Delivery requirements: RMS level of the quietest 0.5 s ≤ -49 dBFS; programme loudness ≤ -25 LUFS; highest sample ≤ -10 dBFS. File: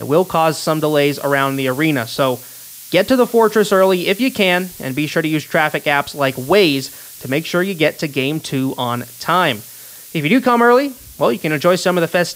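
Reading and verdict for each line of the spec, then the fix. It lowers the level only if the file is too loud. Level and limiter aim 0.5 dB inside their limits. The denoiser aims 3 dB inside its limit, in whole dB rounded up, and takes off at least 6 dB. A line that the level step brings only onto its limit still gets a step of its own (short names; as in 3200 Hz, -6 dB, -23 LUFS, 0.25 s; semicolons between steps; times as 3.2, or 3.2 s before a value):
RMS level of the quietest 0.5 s -37 dBFS: fail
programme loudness -16.0 LUFS: fail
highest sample -2.0 dBFS: fail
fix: denoiser 6 dB, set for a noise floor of -37 dBFS; gain -9.5 dB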